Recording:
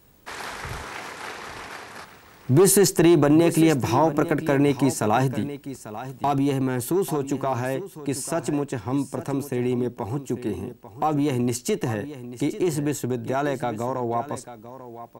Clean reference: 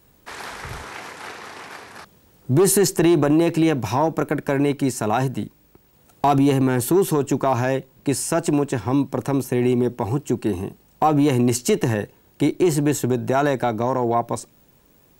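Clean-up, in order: inverse comb 0.843 s -13.5 dB; gain correction +5.5 dB, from 6.21

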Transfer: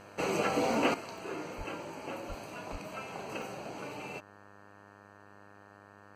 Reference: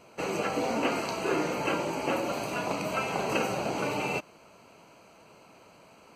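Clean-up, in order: de-hum 101.2 Hz, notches 18; 1.57–1.69 HPF 140 Hz 24 dB/oct; 2.28–2.4 HPF 140 Hz 24 dB/oct; 2.71–2.83 HPF 140 Hz 24 dB/oct; interpolate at 0.74/1.18/1.83/2.86/3.42, 1.2 ms; 0.94 gain correction +11.5 dB

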